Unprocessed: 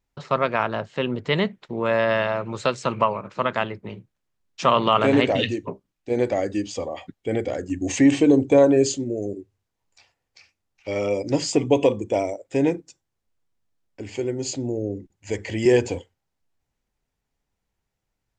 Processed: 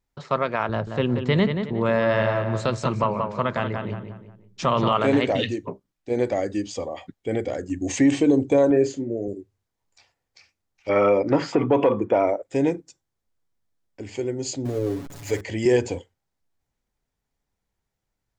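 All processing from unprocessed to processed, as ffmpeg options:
ffmpeg -i in.wav -filter_complex "[0:a]asettb=1/sr,asplit=3[link_01][link_02][link_03];[link_01]atrim=end=0.694[link_04];[link_02]atrim=start=0.69:end=4.93,asetpts=PTS-STARTPTS,afade=type=in:duration=0.004:curve=qsin,afade=type=out:start_time=4.236:duration=0.004:curve=qsin,lowshelf=frequency=170:gain=12,asplit=2[link_05][link_06];[link_06]adelay=180,lowpass=frequency=3100:poles=1,volume=-7dB,asplit=2[link_07][link_08];[link_08]adelay=180,lowpass=frequency=3100:poles=1,volume=0.38,asplit=2[link_09][link_10];[link_10]adelay=180,lowpass=frequency=3100:poles=1,volume=0.38,asplit=2[link_11][link_12];[link_12]adelay=180,lowpass=frequency=3100:poles=1,volume=0.38[link_13];[link_05][link_07][link_09][link_11][link_13]amix=inputs=5:normalize=0,atrim=end_sample=186984[link_14];[link_03]atrim=start=4.926[link_15];[link_04][link_14]acrossfade=duration=0.004:curve1=hsin:curve2=qsin[link_16];[link_16][link_15]acrossfade=duration=0.004:curve1=qsin:curve2=hsin,asettb=1/sr,asplit=3[link_17][link_18][link_19];[link_17]atrim=end=8.704[link_20];[link_18]atrim=start=8.7:end=9.28,asetpts=PTS-STARTPTS,afade=type=in:duration=0.004:curve=qsin,afade=type=out:start_time=0.576:duration=0.004:curve=qsin,highpass=100,lowpass=6600,highshelf=frequency=2600:width_type=q:width=1.5:gain=-8,asplit=2[link_21][link_22];[link_22]adelay=35,volume=-11dB[link_23];[link_21][link_23]amix=inputs=2:normalize=0,atrim=end_sample=25578[link_24];[link_19]atrim=start=9.276[link_25];[link_20][link_24]acrossfade=duration=0.004:curve1=hsin:curve2=qsin[link_26];[link_26][link_25]acrossfade=duration=0.004:curve1=qsin:curve2=hsin,asettb=1/sr,asplit=3[link_27][link_28][link_29];[link_27]atrim=end=10.894[link_30];[link_28]atrim=start=10.89:end=12.43,asetpts=PTS-STARTPTS,afade=type=in:duration=0.004:curve=qsin,afade=type=out:start_time=1.536:duration=0.004:curve=qsin,equalizer=frequency=1300:width_type=o:width=1:gain=13.5,acontrast=38,highpass=120,lowpass=2300[link_31];[link_29]atrim=start=12.426[link_32];[link_30][link_31]acrossfade=duration=0.004:curve1=hsin:curve2=qsin[link_33];[link_33][link_32]acrossfade=duration=0.004:curve1=qsin:curve2=hsin,asettb=1/sr,asplit=3[link_34][link_35][link_36];[link_34]atrim=end=14.654[link_37];[link_35]atrim=start=14.65:end=15.41,asetpts=PTS-STARTPTS,afade=type=in:duration=0.004:curve=qsin,afade=type=out:start_time=0.756:duration=0.004:curve=qsin,aeval=exprs='val(0)+0.5*0.0188*sgn(val(0))':channel_layout=same,aecho=1:1:7.1:0.62,atrim=end_sample=33516[link_38];[link_36]atrim=start=15.406[link_39];[link_37][link_38]acrossfade=duration=0.004:curve1=hsin:curve2=qsin[link_40];[link_40][link_39]acrossfade=duration=0.004:curve1=qsin:curve2=hsin,equalizer=frequency=2700:width=4.7:gain=-3.5,alimiter=level_in=7.5dB:limit=-1dB:release=50:level=0:latency=1,volume=-8.5dB" out.wav

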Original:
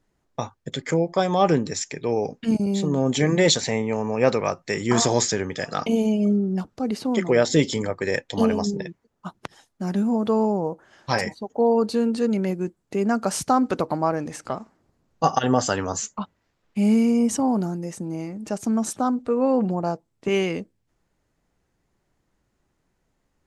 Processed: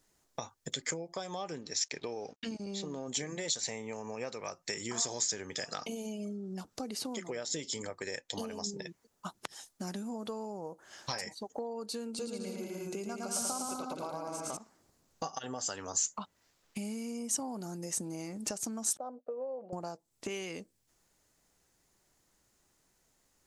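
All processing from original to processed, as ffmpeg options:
ffmpeg -i in.wav -filter_complex "[0:a]asettb=1/sr,asplit=3[link_01][link_02][link_03];[link_01]atrim=end=1.614[link_04];[link_02]atrim=start=1.61:end=3.08,asetpts=PTS-STARTPTS,afade=type=in:duration=0.004:curve=qsin,afade=type=out:start_time=1.466:duration=0.004:curve=qsin,equalizer=frequency=130:width=1.5:gain=-4.5,aeval=exprs='sgn(val(0))*max(abs(val(0))-0.00237,0)':channel_layout=same,lowpass=frequency=5900:width=0.5412,lowpass=frequency=5900:width=1.3066[link_05];[link_03]atrim=start=3.076[link_06];[link_04][link_05]acrossfade=duration=0.004:curve1=hsin:curve2=qsin[link_07];[link_07][link_06]acrossfade=duration=0.004:curve1=qsin:curve2=hsin,asettb=1/sr,asplit=3[link_08][link_09][link_10];[link_08]atrim=end=12.084[link_11];[link_09]atrim=start=12.08:end=14.57,asetpts=PTS-STARTPTS,afade=type=in:duration=0.004:curve=qsin,afade=type=out:start_time=2.486:duration=0.004:curve=qsin,asuperstop=centerf=1800:order=4:qfactor=4.5,aecho=1:1:110|192.5|254.4|300.8|335.6|361.7:0.794|0.631|0.501|0.398|0.316|0.251,atrim=end_sample=109809[link_12];[link_10]atrim=start=14.566[link_13];[link_11][link_12]acrossfade=duration=0.004:curve1=hsin:curve2=qsin[link_14];[link_14][link_13]acrossfade=duration=0.004:curve1=qsin:curve2=hsin,asettb=1/sr,asplit=3[link_15][link_16][link_17];[link_15]atrim=end=18.974[link_18];[link_16]atrim=start=18.97:end=19.73,asetpts=PTS-STARTPTS,afade=type=in:duration=0.004:curve=qsin,afade=type=out:start_time=0.756:duration=0.004:curve=qsin,bandpass=frequency=580:width_type=q:width=4.6,agate=range=-33dB:threshold=-47dB:ratio=3:release=100:detection=peak[link_19];[link_17]atrim=start=19.726[link_20];[link_18][link_19]acrossfade=duration=0.004:curve1=hsin:curve2=qsin[link_21];[link_21][link_20]acrossfade=duration=0.004:curve1=qsin:curve2=hsin,lowshelf=frequency=440:gain=-5,acompressor=threshold=-36dB:ratio=12,bass=frequency=250:gain=-2,treble=frequency=4000:gain=12" out.wav

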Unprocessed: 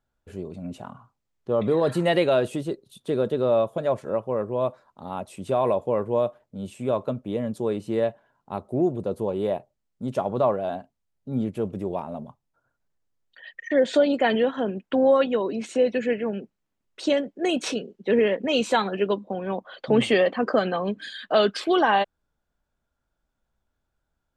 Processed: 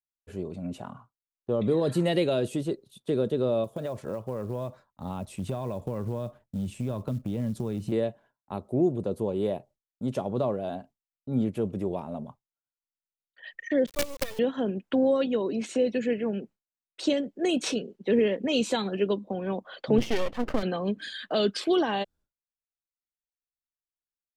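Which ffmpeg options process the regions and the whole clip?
ffmpeg -i in.wav -filter_complex "[0:a]asettb=1/sr,asplit=3[link_01][link_02][link_03];[link_01]atrim=end=3.644[link_04];[link_02]atrim=start=3.64:end=7.92,asetpts=PTS-STARTPTS,afade=type=in:duration=0.004:curve=qsin,afade=type=out:start_time=4.276:duration=0.004:curve=qsin,asubboost=boost=5.5:cutoff=210,acompressor=threshold=-26dB:ratio=6:attack=3.2:release=140:knee=1:detection=peak,acrusher=bits=8:mode=log:mix=0:aa=0.000001[link_05];[link_03]atrim=start=7.916[link_06];[link_04][link_05]acrossfade=duration=0.004:curve1=hsin:curve2=qsin[link_07];[link_07][link_06]acrossfade=duration=0.004:curve1=qsin:curve2=hsin,asettb=1/sr,asplit=3[link_08][link_09][link_10];[link_08]atrim=end=13.864[link_11];[link_09]atrim=start=13.86:end=14.39,asetpts=PTS-STARTPTS,afade=type=in:duration=0.004:curve=qsin,afade=type=out:start_time=0.526:duration=0.004:curve=qsin,asplit=3[link_12][link_13][link_14];[link_12]bandpass=frequency=530:width_type=q:width=8,volume=0dB[link_15];[link_13]bandpass=frequency=1840:width_type=q:width=8,volume=-6dB[link_16];[link_14]bandpass=frequency=2480:width_type=q:width=8,volume=-9dB[link_17];[link_15][link_16][link_17]amix=inputs=3:normalize=0,acrusher=bits=4:dc=4:mix=0:aa=0.000001[link_18];[link_10]atrim=start=14.386[link_19];[link_11][link_18]acrossfade=duration=0.004:curve1=hsin:curve2=qsin[link_20];[link_20][link_19]acrossfade=duration=0.004:curve1=qsin:curve2=hsin,asettb=1/sr,asplit=3[link_21][link_22][link_23];[link_21]atrim=end=19.984[link_24];[link_22]atrim=start=19.98:end=20.63,asetpts=PTS-STARTPTS,afade=type=in:duration=0.004:curve=qsin,afade=type=out:start_time=0.646:duration=0.004:curve=qsin,lowpass=3500,aeval=exprs='max(val(0),0)':channel_layout=same[link_25];[link_23]atrim=start=20.626[link_26];[link_24][link_25]acrossfade=duration=0.004:curve1=hsin:curve2=qsin[link_27];[link_27][link_26]acrossfade=duration=0.004:curve1=qsin:curve2=hsin,agate=range=-33dB:threshold=-44dB:ratio=3:detection=peak,acrossover=split=460|3000[link_28][link_29][link_30];[link_29]acompressor=threshold=-38dB:ratio=2.5[link_31];[link_28][link_31][link_30]amix=inputs=3:normalize=0" out.wav

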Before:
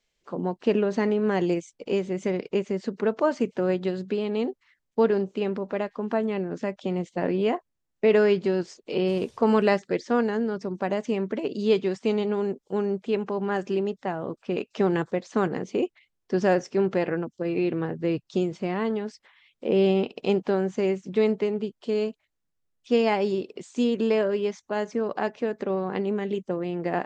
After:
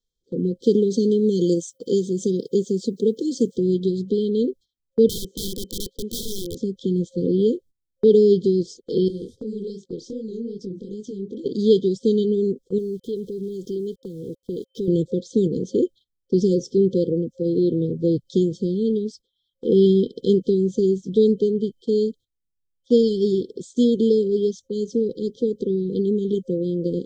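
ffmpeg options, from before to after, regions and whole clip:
ffmpeg -i in.wav -filter_complex "[0:a]asettb=1/sr,asplit=3[link_01][link_02][link_03];[link_01]atrim=end=0.624[link_04];[link_02]atrim=start=0.62:end=3.58,asetpts=PTS-STARTPTS,afade=type=in:duration=0.004:curve=qsin,afade=type=out:start_time=2.956:duration=0.004:curve=qsin,highpass=120,aemphasis=mode=production:type=50fm[link_05];[link_03]atrim=start=3.576[link_06];[link_04][link_05]acrossfade=duration=0.004:curve1=hsin:curve2=qsin[link_07];[link_07][link_06]acrossfade=duration=0.004:curve1=qsin:curve2=hsin,asettb=1/sr,asplit=3[link_08][link_09][link_10];[link_08]atrim=end=5.084[link_11];[link_09]atrim=start=5.08:end=6.57,asetpts=PTS-STARTPTS,afade=type=in:duration=0.004:curve=qsin,afade=type=out:start_time=1.486:duration=0.004:curve=qsin,bass=frequency=250:gain=-12,treble=frequency=4000:gain=2,aeval=exprs='(mod(23.7*val(0)+1,2)-1)/23.7':channel_layout=same[link_12];[link_10]atrim=start=6.566[link_13];[link_11][link_12]acrossfade=duration=0.004:curve1=hsin:curve2=qsin[link_14];[link_14][link_13]acrossfade=duration=0.004:curve1=qsin:curve2=hsin,asettb=1/sr,asplit=3[link_15][link_16][link_17];[link_15]atrim=end=9.084[link_18];[link_16]atrim=start=9.08:end=11.46,asetpts=PTS-STARTPTS,afade=type=in:duration=0.004:curve=qsin,afade=type=out:start_time=2.376:duration=0.004:curve=qsin,acompressor=threshold=-31dB:ratio=4:attack=3.2:release=140:knee=1:detection=peak,flanger=delay=18.5:depth=8:speed=2.6[link_19];[link_17]atrim=start=11.456[link_20];[link_18][link_19]acrossfade=duration=0.004:curve1=hsin:curve2=qsin[link_21];[link_21][link_20]acrossfade=duration=0.004:curve1=qsin:curve2=hsin,asettb=1/sr,asplit=3[link_22][link_23][link_24];[link_22]atrim=end=12.784[link_25];[link_23]atrim=start=12.78:end=14.88,asetpts=PTS-STARTPTS,afade=type=in:duration=0.004:curve=qsin,afade=type=out:start_time=2.096:duration=0.004:curve=qsin,equalizer=frequency=230:width=2.2:gain=-4,acompressor=threshold=-34dB:ratio=2:attack=3.2:release=140:knee=1:detection=peak,aeval=exprs='val(0)*gte(abs(val(0)),0.00237)':channel_layout=same[link_26];[link_24]atrim=start=14.876[link_27];[link_25][link_26]acrossfade=duration=0.004:curve1=hsin:curve2=qsin[link_28];[link_28][link_27]acrossfade=duration=0.004:curve1=qsin:curve2=hsin,afftfilt=real='re*(1-between(b*sr/4096,530,3100))':imag='im*(1-between(b*sr/4096,530,3100))':win_size=4096:overlap=0.75,agate=range=-14dB:threshold=-47dB:ratio=16:detection=peak,lowshelf=frequency=98:gain=9,volume=5dB" out.wav

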